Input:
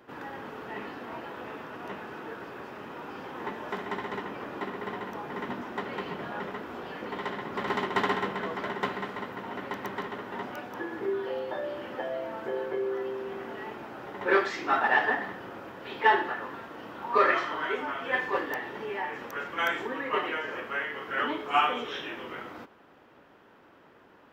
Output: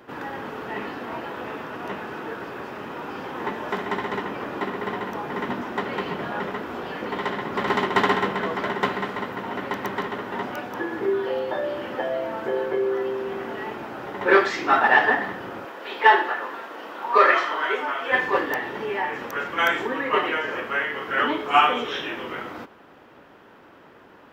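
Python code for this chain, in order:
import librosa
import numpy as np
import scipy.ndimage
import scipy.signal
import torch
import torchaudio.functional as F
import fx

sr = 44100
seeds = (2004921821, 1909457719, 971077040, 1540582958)

y = fx.highpass(x, sr, hz=380.0, slope=12, at=(15.65, 18.12))
y = F.gain(torch.from_numpy(y), 7.0).numpy()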